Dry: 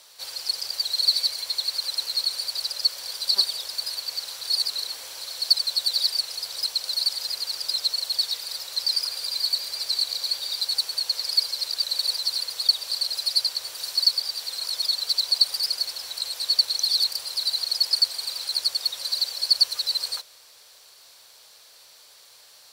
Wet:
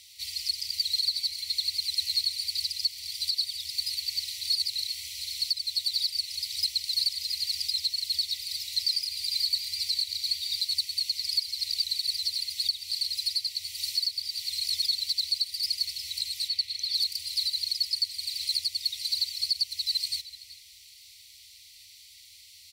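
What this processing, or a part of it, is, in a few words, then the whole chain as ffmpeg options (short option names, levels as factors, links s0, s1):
car stereo with a boomy subwoofer: -filter_complex "[0:a]asplit=3[s0][s1][s2];[s0]afade=t=out:st=16.47:d=0.02[s3];[s1]bass=f=250:g=-3,treble=f=4000:g=-12,afade=t=in:st=16.47:d=0.02,afade=t=out:st=16.94:d=0.02[s4];[s2]afade=t=in:st=16.94:d=0.02[s5];[s3][s4][s5]amix=inputs=3:normalize=0,afftfilt=real='re*(1-between(b*sr/4096,170,1900))':imag='im*(1-between(b*sr/4096,170,1900))':win_size=4096:overlap=0.75,lowshelf=f=110:t=q:w=3:g=8.5,equalizer=f=2300:w=0.61:g=2.5,alimiter=limit=0.168:level=0:latency=1:release=462,asplit=2[s6][s7];[s7]adelay=379,volume=0.224,highshelf=f=4000:g=-8.53[s8];[s6][s8]amix=inputs=2:normalize=0,volume=0.841"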